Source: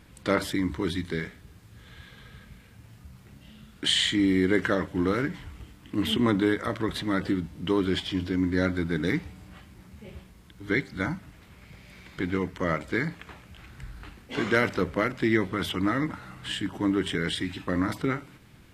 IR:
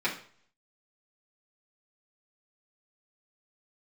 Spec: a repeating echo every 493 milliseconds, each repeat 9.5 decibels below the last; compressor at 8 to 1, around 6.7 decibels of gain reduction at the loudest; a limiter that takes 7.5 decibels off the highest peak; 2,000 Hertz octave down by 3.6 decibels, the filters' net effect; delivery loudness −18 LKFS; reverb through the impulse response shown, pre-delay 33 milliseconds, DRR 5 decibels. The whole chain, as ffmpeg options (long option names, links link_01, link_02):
-filter_complex "[0:a]equalizer=frequency=2000:width_type=o:gain=-4.5,acompressor=threshold=-26dB:ratio=8,alimiter=limit=-22.5dB:level=0:latency=1,aecho=1:1:493|986|1479|1972:0.335|0.111|0.0365|0.012,asplit=2[link_01][link_02];[1:a]atrim=start_sample=2205,adelay=33[link_03];[link_02][link_03]afir=irnorm=-1:irlink=0,volume=-15dB[link_04];[link_01][link_04]amix=inputs=2:normalize=0,volume=15.5dB"